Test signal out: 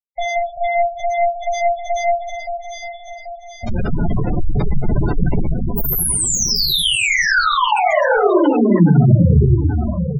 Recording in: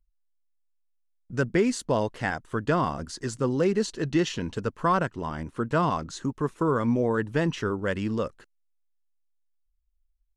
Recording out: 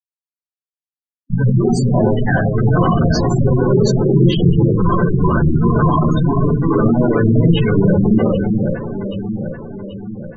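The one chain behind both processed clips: companding laws mixed up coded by A; in parallel at +1 dB: peak limiter -22.5 dBFS; on the sum: fuzz box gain 47 dB, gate -52 dBFS; on a send: echo whose repeats swap between lows and highs 392 ms, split 1 kHz, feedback 71%, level -4 dB; on the sum: simulated room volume 1000 m³, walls furnished, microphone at 7.5 m; spectral gate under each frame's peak -15 dB strong; trim -10.5 dB

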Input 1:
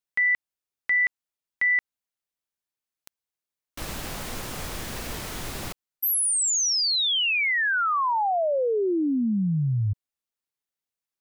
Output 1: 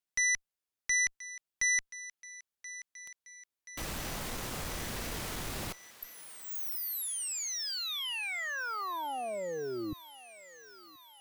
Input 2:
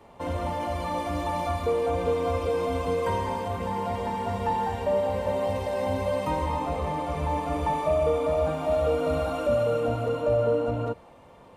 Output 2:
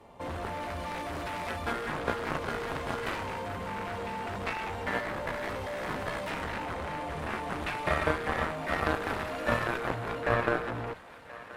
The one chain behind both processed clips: Chebyshev shaper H 2 -24 dB, 3 -8 dB, 7 -25 dB, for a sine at -13.5 dBFS; thinning echo 1029 ms, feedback 65%, high-pass 800 Hz, level -15.5 dB; trim +2.5 dB

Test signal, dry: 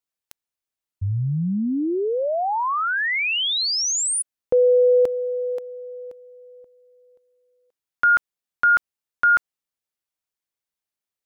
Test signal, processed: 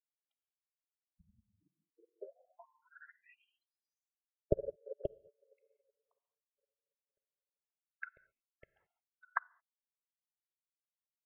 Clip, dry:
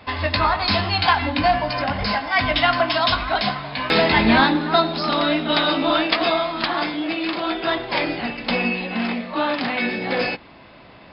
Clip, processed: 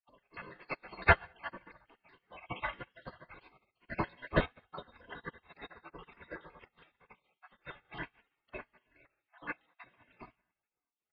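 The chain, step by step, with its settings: random holes in the spectrogram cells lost 62%; low-pass 2.1 kHz 24 dB/octave; comb 1.9 ms, depth 80%; gated-style reverb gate 240 ms flat, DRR 9.5 dB; spectral gate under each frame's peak -15 dB weak; upward expansion 2.5:1, over -47 dBFS; trim +4.5 dB

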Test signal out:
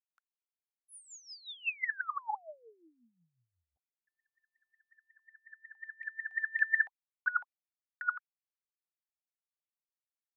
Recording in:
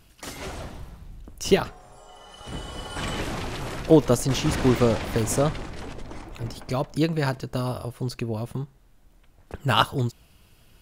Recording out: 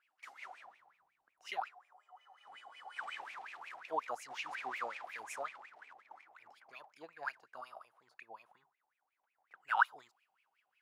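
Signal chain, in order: RIAA curve recording; wah-wah 5.5 Hz 740–2500 Hz, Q 14; tape noise reduction on one side only decoder only

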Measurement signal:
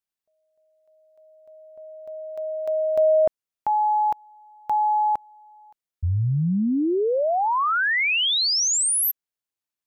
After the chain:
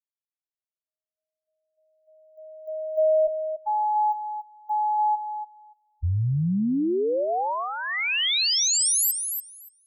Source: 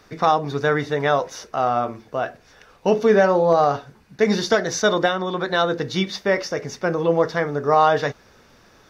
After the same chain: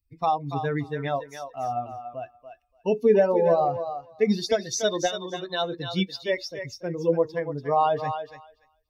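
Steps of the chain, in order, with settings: expander on every frequency bin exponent 2; peaking EQ 1.4 kHz -11 dB 0.82 oct; on a send: thinning echo 288 ms, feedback 15%, high-pass 660 Hz, level -6.5 dB

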